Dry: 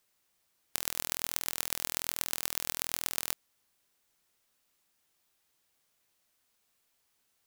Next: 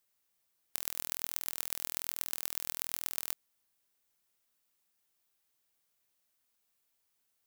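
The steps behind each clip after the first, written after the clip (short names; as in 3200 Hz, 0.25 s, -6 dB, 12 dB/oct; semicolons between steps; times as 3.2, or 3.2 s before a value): high shelf 11000 Hz +7 dB; gain -7 dB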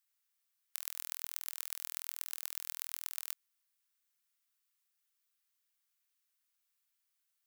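HPF 1100 Hz 24 dB/oct; gain -4 dB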